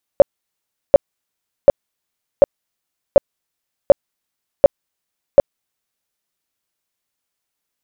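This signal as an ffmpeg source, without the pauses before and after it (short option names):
-f lavfi -i "aevalsrc='0.841*sin(2*PI*563*mod(t,0.74))*lt(mod(t,0.74),11/563)':d=5.92:s=44100"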